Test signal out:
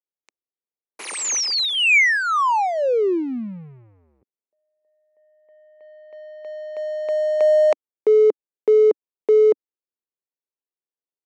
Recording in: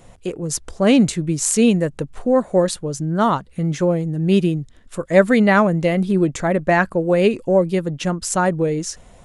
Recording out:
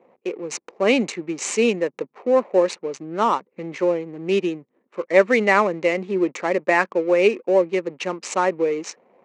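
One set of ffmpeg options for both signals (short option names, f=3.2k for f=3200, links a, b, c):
-af "adynamicsmooth=sensitivity=8:basefreq=530,highpass=f=290:w=0.5412,highpass=f=290:w=1.3066,equalizer=f=290:t=q:w=4:g=-6,equalizer=f=670:t=q:w=4:g=-7,equalizer=f=1.5k:t=q:w=4:g=-7,equalizer=f=2.3k:t=q:w=4:g=5,equalizer=f=3.4k:t=q:w=4:g=-8,equalizer=f=5k:t=q:w=4:g=-6,lowpass=f=6.6k:w=0.5412,lowpass=f=6.6k:w=1.3066,volume=1.5dB"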